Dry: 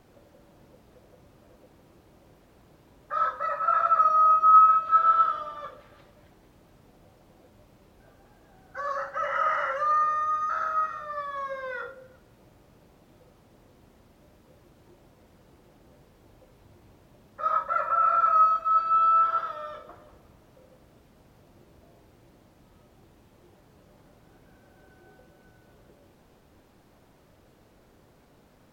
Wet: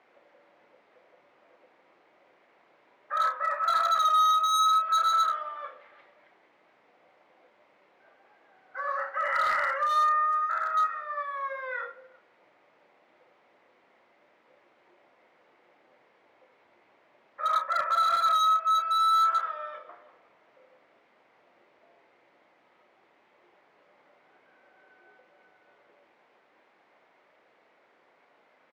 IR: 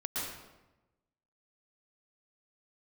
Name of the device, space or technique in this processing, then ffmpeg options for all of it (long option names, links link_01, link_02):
megaphone: -filter_complex "[0:a]highpass=600,lowpass=2800,equalizer=frequency=2100:width_type=o:width=0.38:gain=7.5,asoftclip=type=hard:threshold=-21.5dB,asplit=2[link_01][link_02];[link_02]adelay=31,volume=-9.5dB[link_03];[link_01][link_03]amix=inputs=2:normalize=0,asplit=3[link_04][link_05][link_06];[link_04]afade=type=out:start_time=11.32:duration=0.02[link_07];[link_05]highpass=frequency=260:width=0.5412,highpass=frequency=260:width=1.3066,afade=type=in:start_time=11.32:duration=0.02,afade=type=out:start_time=11.76:duration=0.02[link_08];[link_06]afade=type=in:start_time=11.76:duration=0.02[link_09];[link_07][link_08][link_09]amix=inputs=3:normalize=0"